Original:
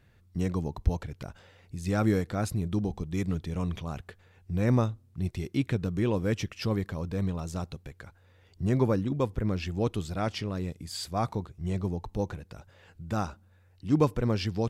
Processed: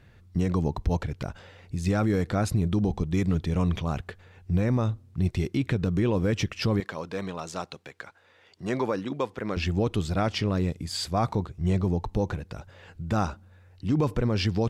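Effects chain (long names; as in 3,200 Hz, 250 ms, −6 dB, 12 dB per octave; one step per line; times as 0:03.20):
0:06.80–0:09.57: meter weighting curve A
brickwall limiter −22.5 dBFS, peak gain reduction 11 dB
high-shelf EQ 10,000 Hz −10.5 dB
level +7 dB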